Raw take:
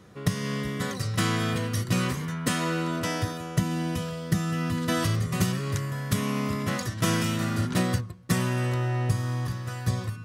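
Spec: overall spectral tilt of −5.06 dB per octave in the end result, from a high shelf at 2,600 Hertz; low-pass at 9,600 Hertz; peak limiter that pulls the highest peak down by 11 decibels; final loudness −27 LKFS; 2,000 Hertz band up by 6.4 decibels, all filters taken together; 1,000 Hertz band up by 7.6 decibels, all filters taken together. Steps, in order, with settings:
low-pass filter 9,600 Hz
parametric band 1,000 Hz +8 dB
parametric band 2,000 Hz +7 dB
high-shelf EQ 2,600 Hz −4.5 dB
level +2 dB
brickwall limiter −18 dBFS

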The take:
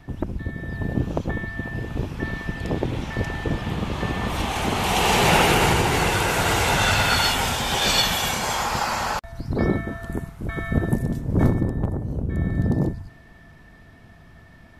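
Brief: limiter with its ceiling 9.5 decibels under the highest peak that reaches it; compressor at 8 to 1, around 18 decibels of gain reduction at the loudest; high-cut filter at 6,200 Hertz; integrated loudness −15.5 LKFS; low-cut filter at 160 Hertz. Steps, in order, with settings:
high-pass filter 160 Hz
low-pass filter 6,200 Hz
downward compressor 8 to 1, threshold −34 dBFS
level +24.5 dB
brickwall limiter −6 dBFS

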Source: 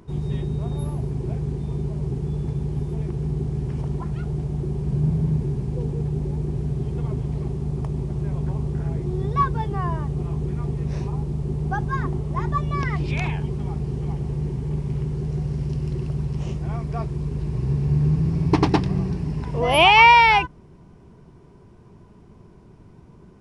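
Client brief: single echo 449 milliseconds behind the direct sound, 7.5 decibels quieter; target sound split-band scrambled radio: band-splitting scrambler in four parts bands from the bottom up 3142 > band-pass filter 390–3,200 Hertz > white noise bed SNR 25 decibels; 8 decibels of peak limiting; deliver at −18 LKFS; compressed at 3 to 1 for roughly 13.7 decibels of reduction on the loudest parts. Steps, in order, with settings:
downward compressor 3 to 1, threshold −28 dBFS
brickwall limiter −23 dBFS
single-tap delay 449 ms −7.5 dB
band-splitting scrambler in four parts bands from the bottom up 3142
band-pass filter 390–3,200 Hz
white noise bed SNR 25 dB
level +11 dB

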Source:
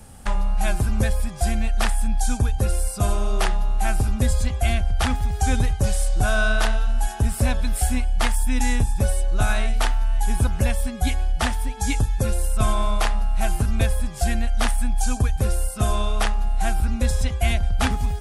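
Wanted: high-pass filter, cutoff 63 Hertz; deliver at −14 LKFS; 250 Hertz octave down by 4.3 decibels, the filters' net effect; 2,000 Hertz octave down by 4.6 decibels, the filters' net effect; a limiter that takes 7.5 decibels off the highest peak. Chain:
high-pass filter 63 Hz
parametric band 250 Hz −5 dB
parametric band 2,000 Hz −6.5 dB
level +15.5 dB
brickwall limiter −1.5 dBFS

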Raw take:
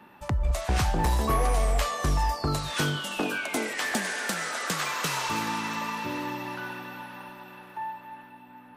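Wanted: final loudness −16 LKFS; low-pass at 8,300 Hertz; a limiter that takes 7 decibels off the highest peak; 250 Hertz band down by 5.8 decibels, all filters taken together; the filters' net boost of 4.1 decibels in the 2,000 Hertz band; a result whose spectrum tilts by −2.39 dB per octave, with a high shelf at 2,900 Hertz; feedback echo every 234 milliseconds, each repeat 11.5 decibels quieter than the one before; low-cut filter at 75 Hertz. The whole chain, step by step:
high-pass filter 75 Hz
low-pass filter 8,300 Hz
parametric band 250 Hz −8.5 dB
parametric band 2,000 Hz +3.5 dB
high-shelf EQ 2,900 Hz +5 dB
brickwall limiter −19 dBFS
repeating echo 234 ms, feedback 27%, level −11.5 dB
level +12.5 dB

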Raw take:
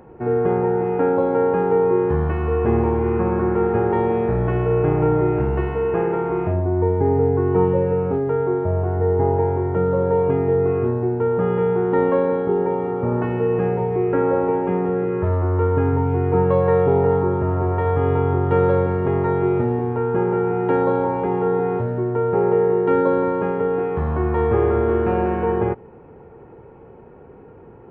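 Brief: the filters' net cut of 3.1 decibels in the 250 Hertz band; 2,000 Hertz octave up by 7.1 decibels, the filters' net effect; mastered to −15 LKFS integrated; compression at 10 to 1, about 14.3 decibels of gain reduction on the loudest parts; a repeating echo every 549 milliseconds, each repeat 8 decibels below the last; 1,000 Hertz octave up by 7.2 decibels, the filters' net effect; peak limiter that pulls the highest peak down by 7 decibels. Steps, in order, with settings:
parametric band 250 Hz −6 dB
parametric band 1,000 Hz +8 dB
parametric band 2,000 Hz +6 dB
downward compressor 10 to 1, threshold −27 dBFS
brickwall limiter −24 dBFS
repeating echo 549 ms, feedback 40%, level −8 dB
level +17 dB

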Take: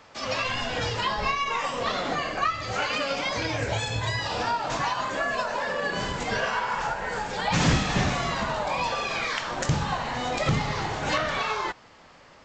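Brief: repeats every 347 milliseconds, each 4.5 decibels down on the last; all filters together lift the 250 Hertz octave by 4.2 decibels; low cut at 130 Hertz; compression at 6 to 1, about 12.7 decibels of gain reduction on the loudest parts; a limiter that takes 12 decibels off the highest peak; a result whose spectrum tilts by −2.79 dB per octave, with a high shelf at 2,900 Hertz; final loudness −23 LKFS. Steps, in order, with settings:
high-pass filter 130 Hz
parametric band 250 Hz +6.5 dB
high-shelf EQ 2,900 Hz +9 dB
downward compressor 6 to 1, threshold −29 dBFS
brickwall limiter −27 dBFS
repeating echo 347 ms, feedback 60%, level −4.5 dB
level +10 dB

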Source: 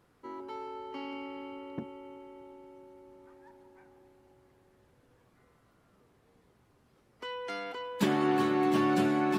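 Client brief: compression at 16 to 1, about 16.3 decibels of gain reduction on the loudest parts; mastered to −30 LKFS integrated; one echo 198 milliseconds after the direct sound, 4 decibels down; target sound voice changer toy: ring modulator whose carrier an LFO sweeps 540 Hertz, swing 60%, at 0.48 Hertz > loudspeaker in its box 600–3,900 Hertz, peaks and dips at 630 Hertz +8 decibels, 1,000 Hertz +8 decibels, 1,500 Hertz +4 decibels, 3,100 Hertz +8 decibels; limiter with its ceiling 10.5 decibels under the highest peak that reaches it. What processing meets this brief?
downward compressor 16 to 1, threshold −39 dBFS
brickwall limiter −38.5 dBFS
single-tap delay 198 ms −4 dB
ring modulator whose carrier an LFO sweeps 540 Hz, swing 60%, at 0.48 Hz
loudspeaker in its box 600–3,900 Hz, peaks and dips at 630 Hz +8 dB, 1,000 Hz +8 dB, 1,500 Hz +4 dB, 3,100 Hz +8 dB
level +17 dB

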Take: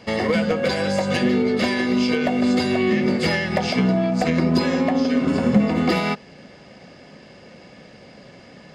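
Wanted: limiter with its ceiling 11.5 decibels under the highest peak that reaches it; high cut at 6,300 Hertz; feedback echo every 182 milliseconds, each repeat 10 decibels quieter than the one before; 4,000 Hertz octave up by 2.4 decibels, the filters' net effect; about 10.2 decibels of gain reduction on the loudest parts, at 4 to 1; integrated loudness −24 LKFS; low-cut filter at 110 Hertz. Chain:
high-pass filter 110 Hz
low-pass filter 6,300 Hz
parametric band 4,000 Hz +4 dB
downward compressor 4 to 1, threshold −23 dBFS
brickwall limiter −25.5 dBFS
repeating echo 182 ms, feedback 32%, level −10 dB
level +8.5 dB

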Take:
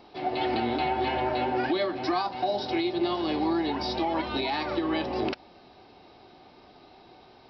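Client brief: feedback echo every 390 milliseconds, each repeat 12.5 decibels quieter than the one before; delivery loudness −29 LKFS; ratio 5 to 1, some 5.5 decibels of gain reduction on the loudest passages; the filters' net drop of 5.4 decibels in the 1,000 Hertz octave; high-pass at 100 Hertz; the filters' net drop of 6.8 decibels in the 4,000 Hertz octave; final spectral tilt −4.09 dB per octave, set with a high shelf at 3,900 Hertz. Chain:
high-pass filter 100 Hz
parametric band 1,000 Hz −7.5 dB
high-shelf EQ 3,900 Hz −5 dB
parametric band 4,000 Hz −5 dB
downward compressor 5 to 1, threshold −30 dBFS
repeating echo 390 ms, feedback 24%, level −12.5 dB
level +5 dB

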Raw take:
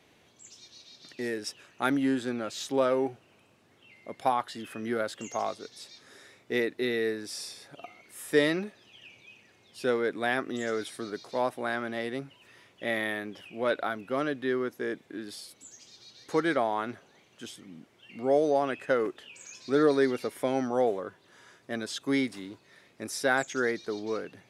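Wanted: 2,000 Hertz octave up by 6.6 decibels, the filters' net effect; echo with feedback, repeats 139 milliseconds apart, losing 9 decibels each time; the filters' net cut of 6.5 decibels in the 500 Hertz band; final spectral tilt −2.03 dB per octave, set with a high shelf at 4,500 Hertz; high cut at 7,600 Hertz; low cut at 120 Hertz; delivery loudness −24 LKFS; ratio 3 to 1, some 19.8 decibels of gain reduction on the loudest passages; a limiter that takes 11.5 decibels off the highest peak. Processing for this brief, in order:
high-pass filter 120 Hz
low-pass filter 7,600 Hz
parametric band 500 Hz −8.5 dB
parametric band 2,000 Hz +7.5 dB
high-shelf EQ 4,500 Hz +7.5 dB
downward compressor 3 to 1, threshold −47 dBFS
brickwall limiter −39 dBFS
repeating echo 139 ms, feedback 35%, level −9 dB
level +24.5 dB

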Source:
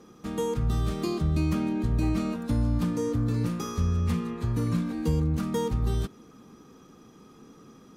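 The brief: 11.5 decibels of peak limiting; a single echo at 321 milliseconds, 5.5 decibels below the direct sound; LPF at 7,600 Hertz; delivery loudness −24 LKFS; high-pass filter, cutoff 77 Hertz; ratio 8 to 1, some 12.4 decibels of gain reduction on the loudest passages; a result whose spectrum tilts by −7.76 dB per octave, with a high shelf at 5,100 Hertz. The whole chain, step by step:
high-pass filter 77 Hz
low-pass filter 7,600 Hz
high-shelf EQ 5,100 Hz −4.5 dB
downward compressor 8 to 1, threshold −36 dBFS
brickwall limiter −38.5 dBFS
single-tap delay 321 ms −5.5 dB
level +21.5 dB

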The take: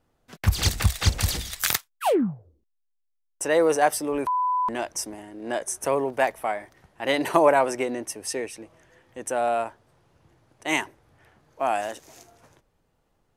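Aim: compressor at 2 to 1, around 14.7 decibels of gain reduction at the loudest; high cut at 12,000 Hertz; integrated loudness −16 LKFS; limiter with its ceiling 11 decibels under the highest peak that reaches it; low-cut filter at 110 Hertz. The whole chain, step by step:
high-pass filter 110 Hz
low-pass filter 12,000 Hz
downward compressor 2 to 1, threshold −42 dBFS
level +23.5 dB
brickwall limiter −5 dBFS

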